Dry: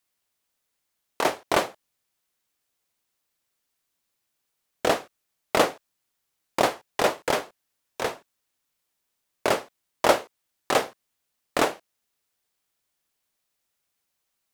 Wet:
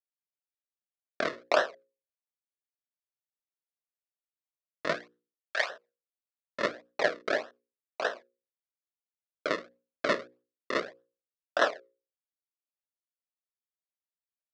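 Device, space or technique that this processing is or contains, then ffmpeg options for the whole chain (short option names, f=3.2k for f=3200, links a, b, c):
circuit-bent sampling toy: -filter_complex "[0:a]agate=range=-33dB:threshold=-41dB:ratio=3:detection=peak,lowshelf=f=490:g=-4,acrusher=samples=38:mix=1:aa=0.000001:lfo=1:lforange=38:lforate=1.7,highpass=530,equalizer=f=610:t=q:w=4:g=7,equalizer=f=870:t=q:w=4:g=-9,equalizer=f=1.7k:t=q:w=4:g=8,equalizer=f=2.9k:t=q:w=4:g=-6,lowpass=f=4.9k:w=0.5412,lowpass=f=4.9k:w=1.3066,asettb=1/sr,asplit=3[a][b][c];[a]atrim=end=4.954[d];[b]atrim=start=4.95:end=5.7,asetpts=PTS-STARTPTS,afade=t=in:d=0.004:c=qsin,afade=t=out:st=0.746:d=0.004:c=qsin,highpass=1.1k[e];[c]atrim=start=5.696[f];[d][e]acrossfade=d=0.004:c1=hsin:c2=qsin[g];[g][f]acrossfade=d=0.004:c1=qsin:c2=hsin,bandreject=f=60:t=h:w=6,bandreject=f=120:t=h:w=6,bandreject=f=180:t=h:w=6,bandreject=f=240:t=h:w=6,bandreject=f=300:t=h:w=6,bandreject=f=360:t=h:w=6,bandreject=f=420:t=h:w=6,bandreject=f=480:t=h:w=6,bandreject=f=540:t=h:w=6"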